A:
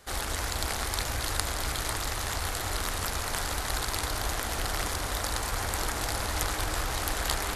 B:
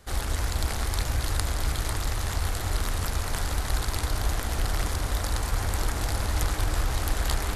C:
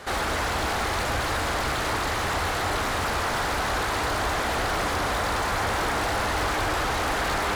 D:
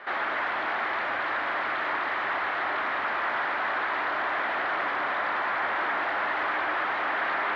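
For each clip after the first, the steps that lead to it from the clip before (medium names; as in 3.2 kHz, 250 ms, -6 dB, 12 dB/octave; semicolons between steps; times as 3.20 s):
bass shelf 240 Hz +10.5 dB; trim -2 dB
overdrive pedal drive 35 dB, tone 1.7 kHz, clips at -6.5 dBFS; trim -8 dB
cabinet simulation 450–2800 Hz, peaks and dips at 470 Hz -9 dB, 790 Hz -3 dB, 1.8 kHz +3 dB, 2.7 kHz -3 dB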